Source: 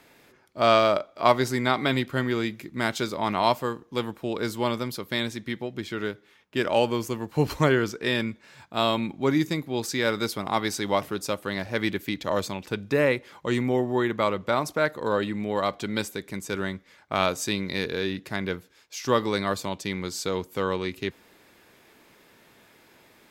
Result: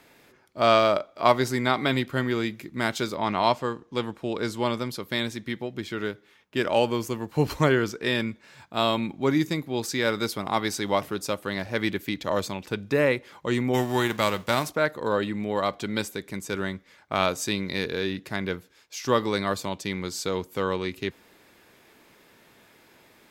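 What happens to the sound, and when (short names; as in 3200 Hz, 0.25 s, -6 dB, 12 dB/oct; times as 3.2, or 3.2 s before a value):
3.15–4.99 LPF 6400 Hz -> 12000 Hz
13.73–14.69 spectral whitening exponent 0.6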